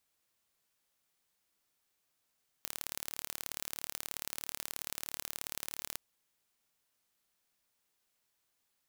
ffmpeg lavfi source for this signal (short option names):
-f lavfi -i "aevalsrc='0.316*eq(mod(n,1195),0)*(0.5+0.5*eq(mod(n,2390),0))':d=3.31:s=44100"